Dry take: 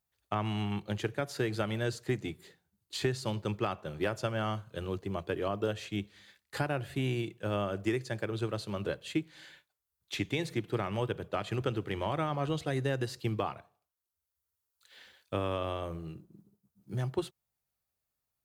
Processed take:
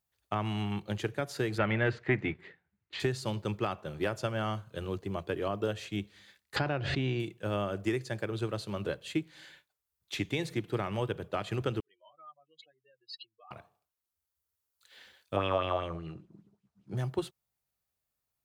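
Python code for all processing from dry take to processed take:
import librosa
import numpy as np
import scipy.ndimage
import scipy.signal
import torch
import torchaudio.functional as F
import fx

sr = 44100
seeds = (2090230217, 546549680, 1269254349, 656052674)

y = fx.chain(x, sr, fx.leveller(passes=1),
    fx.lowpass_res(hz=2100.0, q=2.5), at=(1.58, 3.0))
y = fx.chain(y, sr, fx.lowpass(hz=5300.0, slope=24),
    fx.pre_swell(db_per_s=33.0), at=(6.56, 7.2))
y = fx.chain(y, sr, fx.spec_expand(power=3.6),
    fx.highpass_res(hz=2900.0, q=5.1),
    fx.comb(ms=6.6, depth=0.31), at=(11.8, 13.51))
y = fx.chain(y, sr, fx.lowpass(hz=5900.0, slope=12),
    fx.bell_lfo(hz=5.1, low_hz=660.0, high_hz=3100.0, db=12), at=(15.36, 16.97))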